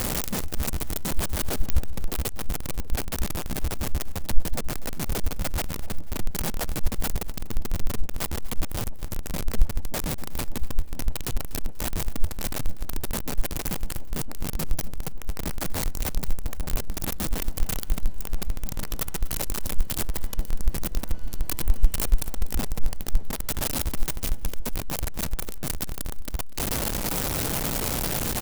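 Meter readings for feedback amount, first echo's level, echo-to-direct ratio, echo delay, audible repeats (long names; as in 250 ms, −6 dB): 36%, −18.0 dB, −17.5 dB, 243 ms, 2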